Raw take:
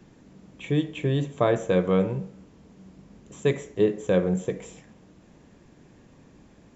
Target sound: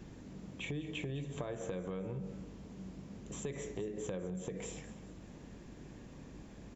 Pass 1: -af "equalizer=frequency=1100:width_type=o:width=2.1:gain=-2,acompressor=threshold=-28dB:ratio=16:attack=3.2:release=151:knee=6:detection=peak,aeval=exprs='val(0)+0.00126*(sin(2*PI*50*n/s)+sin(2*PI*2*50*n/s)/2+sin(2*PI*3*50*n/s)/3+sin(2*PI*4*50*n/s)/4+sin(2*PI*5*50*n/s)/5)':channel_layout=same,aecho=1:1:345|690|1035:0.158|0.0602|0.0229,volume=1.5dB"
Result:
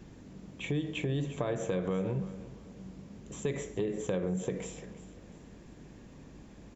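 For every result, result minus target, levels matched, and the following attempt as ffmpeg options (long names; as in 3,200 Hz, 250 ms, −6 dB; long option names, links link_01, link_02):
echo 140 ms late; downward compressor: peak gain reduction −8.5 dB
-af "equalizer=frequency=1100:width_type=o:width=2.1:gain=-2,acompressor=threshold=-28dB:ratio=16:attack=3.2:release=151:knee=6:detection=peak,aeval=exprs='val(0)+0.00126*(sin(2*PI*50*n/s)+sin(2*PI*2*50*n/s)/2+sin(2*PI*3*50*n/s)/3+sin(2*PI*4*50*n/s)/4+sin(2*PI*5*50*n/s)/5)':channel_layout=same,aecho=1:1:205|410|615:0.158|0.0602|0.0229,volume=1.5dB"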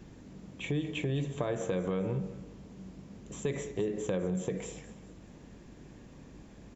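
downward compressor: peak gain reduction −8.5 dB
-af "equalizer=frequency=1100:width_type=o:width=2.1:gain=-2,acompressor=threshold=-37dB:ratio=16:attack=3.2:release=151:knee=6:detection=peak,aeval=exprs='val(0)+0.00126*(sin(2*PI*50*n/s)+sin(2*PI*2*50*n/s)/2+sin(2*PI*3*50*n/s)/3+sin(2*PI*4*50*n/s)/4+sin(2*PI*5*50*n/s)/5)':channel_layout=same,aecho=1:1:205|410|615:0.158|0.0602|0.0229,volume=1.5dB"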